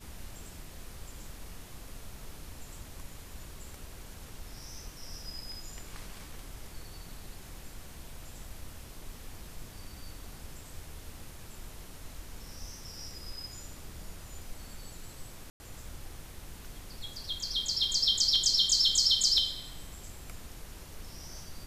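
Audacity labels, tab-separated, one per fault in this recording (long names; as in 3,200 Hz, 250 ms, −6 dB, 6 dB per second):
15.500000	15.600000	drop-out 100 ms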